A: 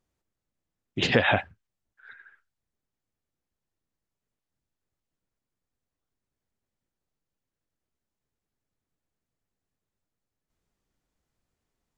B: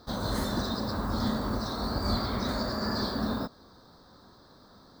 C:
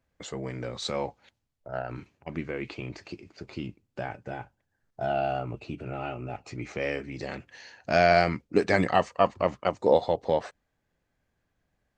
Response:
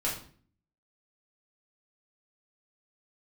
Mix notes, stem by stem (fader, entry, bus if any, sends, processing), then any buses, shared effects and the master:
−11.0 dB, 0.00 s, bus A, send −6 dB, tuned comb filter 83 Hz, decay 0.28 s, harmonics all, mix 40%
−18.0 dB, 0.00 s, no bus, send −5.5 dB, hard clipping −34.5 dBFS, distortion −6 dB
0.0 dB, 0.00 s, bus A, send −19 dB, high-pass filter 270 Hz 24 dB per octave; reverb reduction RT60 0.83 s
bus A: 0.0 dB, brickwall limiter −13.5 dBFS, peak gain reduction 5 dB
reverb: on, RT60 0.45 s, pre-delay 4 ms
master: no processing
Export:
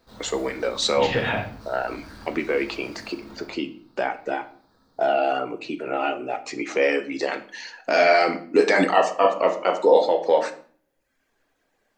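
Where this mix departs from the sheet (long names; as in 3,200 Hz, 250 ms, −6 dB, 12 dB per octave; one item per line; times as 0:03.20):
stem A: missing tuned comb filter 83 Hz, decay 0.28 s, harmonics all, mix 40%
stem C 0.0 dB → +10.0 dB
reverb return +6.5 dB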